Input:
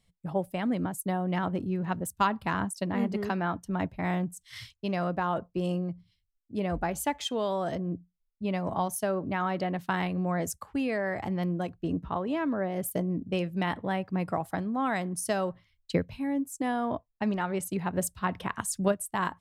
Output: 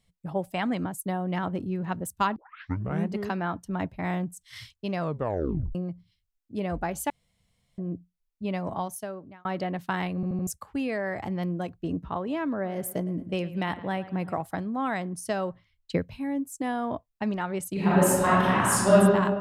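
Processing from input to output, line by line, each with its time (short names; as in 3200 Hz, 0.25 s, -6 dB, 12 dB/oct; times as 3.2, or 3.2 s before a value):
0.44–0.84 spectral gain 650–8600 Hz +6 dB
2.36 tape start 0.76 s
5 tape stop 0.75 s
7.1–7.78 room tone
8.62–9.45 fade out
10.15 stutter in place 0.08 s, 4 plays
12.53–14.42 dark delay 0.112 s, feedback 49%, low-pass 3800 Hz, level -16 dB
14.94–15.95 high shelf 6900 Hz -8 dB
17.73–18.95 reverb throw, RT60 1.7 s, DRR -10.5 dB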